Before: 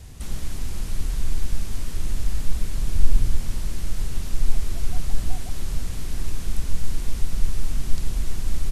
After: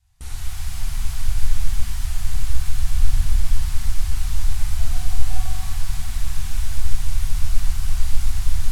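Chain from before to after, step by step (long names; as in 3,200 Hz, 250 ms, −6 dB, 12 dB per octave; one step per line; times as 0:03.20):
brick-wall band-stop 120–660 Hz
noise gate with hold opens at −26 dBFS
reverb with rising layers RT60 2.2 s, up +7 semitones, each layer −8 dB, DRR −7 dB
level −4 dB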